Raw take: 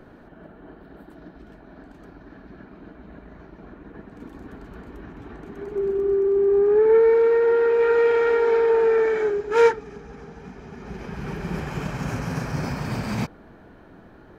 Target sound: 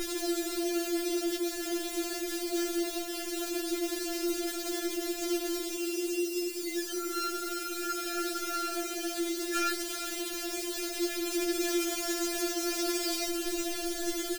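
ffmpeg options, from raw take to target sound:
ffmpeg -i in.wav -filter_complex "[0:a]aeval=exprs='val(0)+0.5*0.0562*sgn(val(0))':channel_layout=same,firequalizer=gain_entry='entry(160,0);entry(540,11);entry(860,-16);entry(1300,-5);entry(3500,6);entry(5500,10)':delay=0.05:min_phase=1,asplit=2[link_01][link_02];[link_02]aecho=0:1:381:0.251[link_03];[link_01][link_03]amix=inputs=2:normalize=0,afftfilt=real='re*4*eq(mod(b,16),0)':imag='im*4*eq(mod(b,16),0)':win_size=2048:overlap=0.75,volume=-4dB" out.wav

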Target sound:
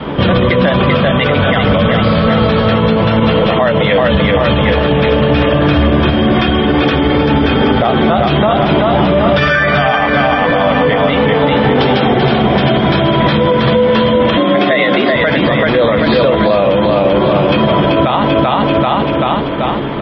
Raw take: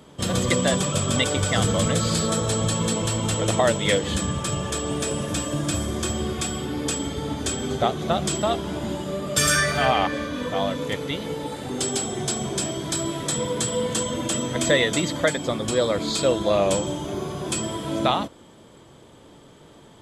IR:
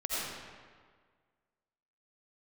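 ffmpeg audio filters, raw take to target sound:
-filter_complex "[0:a]asplit=2[link_01][link_02];[link_02]adelay=14,volume=-11.5dB[link_03];[link_01][link_03]amix=inputs=2:normalize=0,adynamicequalizer=threshold=0.00891:dfrequency=340:dqfactor=2.4:tfrequency=340:tqfactor=2.4:attack=5:release=100:ratio=0.375:range=2.5:mode=cutabove:tftype=bell,asplit=3[link_04][link_05][link_06];[link_04]afade=type=out:start_time=16.56:duration=0.02[link_07];[link_05]acrusher=bits=6:mode=log:mix=0:aa=0.000001,afade=type=in:start_time=16.56:duration=0.02,afade=type=out:start_time=17.09:duration=0.02[link_08];[link_06]afade=type=in:start_time=17.09:duration=0.02[link_09];[link_07][link_08][link_09]amix=inputs=3:normalize=0,equalizer=frequency=110:width_type=o:width=0.76:gain=-2.5,bandreject=frequency=50:width_type=h:width=6,bandreject=frequency=100:width_type=h:width=6,bandreject=frequency=150:width_type=h:width=6,aecho=1:1:388|776|1164|1552|1940|2328:0.631|0.309|0.151|0.0742|0.0364|0.0178,acompressor=threshold=-30dB:ratio=5,asettb=1/sr,asplit=3[link_10][link_11][link_12];[link_10]atrim=end=14.374[link_13];[link_11]atrim=start=14.37:end=15.16,asetpts=PTS-STARTPTS,afade=type=in:duration=0.004:curve=qsin,afade=type=out:start_time=0.786:duration=0.004:curve=qsin,afreqshift=67[link_14];[link_12]atrim=start=15.156[link_15];[link_13][link_14]acrossfade=duration=0.004:curve1=hsin:curve2=qsin[link_16];[link_16][link_15]acrossfade=duration=0.004:curve1=qsin:curve2=hsin,lowpass=frequency=2900:width=0.5412,lowpass=frequency=2900:width=1.3066,alimiter=level_in=30.5dB:limit=-1dB:release=50:level=0:latency=1,volume=-1.5dB" -ar 24000 -c:a libmp3lame -b:a 24k

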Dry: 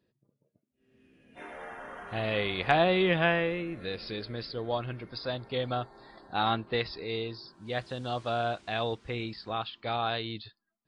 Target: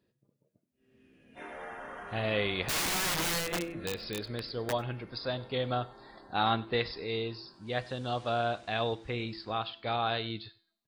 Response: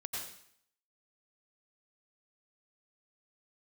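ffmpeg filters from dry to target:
-filter_complex "[0:a]bandreject=frequency=167.2:width_type=h:width=4,bandreject=frequency=334.4:width_type=h:width=4,bandreject=frequency=501.6:width_type=h:width=4,bandreject=frequency=668.8:width_type=h:width=4,bandreject=frequency=836:width_type=h:width=4,bandreject=frequency=1003.2:width_type=h:width=4,bandreject=frequency=1170.4:width_type=h:width=4,bandreject=frequency=1337.6:width_type=h:width=4,bandreject=frequency=1504.8:width_type=h:width=4,bandreject=frequency=1672:width_type=h:width=4,bandreject=frequency=1839.2:width_type=h:width=4,bandreject=frequency=2006.4:width_type=h:width=4,bandreject=frequency=2173.6:width_type=h:width=4,bandreject=frequency=2340.8:width_type=h:width=4,bandreject=frequency=2508:width_type=h:width=4,bandreject=frequency=2675.2:width_type=h:width=4,bandreject=frequency=2842.4:width_type=h:width=4,bandreject=frequency=3009.6:width_type=h:width=4,bandreject=frequency=3176.8:width_type=h:width=4,bandreject=frequency=3344:width_type=h:width=4,bandreject=frequency=3511.2:width_type=h:width=4,bandreject=frequency=3678.4:width_type=h:width=4,bandreject=frequency=3845.6:width_type=h:width=4,bandreject=frequency=4012.8:width_type=h:width=4,bandreject=frequency=4180:width_type=h:width=4,bandreject=frequency=4347.2:width_type=h:width=4,bandreject=frequency=4514.4:width_type=h:width=4,bandreject=frequency=4681.6:width_type=h:width=4,bandreject=frequency=4848.8:width_type=h:width=4,bandreject=frequency=5016:width_type=h:width=4,bandreject=frequency=5183.2:width_type=h:width=4,bandreject=frequency=5350.4:width_type=h:width=4,asplit=3[link_01][link_02][link_03];[link_01]afade=type=out:start_time=2.66:duration=0.02[link_04];[link_02]aeval=exprs='(mod(20*val(0)+1,2)-1)/20':channel_layout=same,afade=type=in:start_time=2.66:duration=0.02,afade=type=out:start_time=4.71:duration=0.02[link_05];[link_03]afade=type=in:start_time=4.71:duration=0.02[link_06];[link_04][link_05][link_06]amix=inputs=3:normalize=0,aecho=1:1:97:0.0794"

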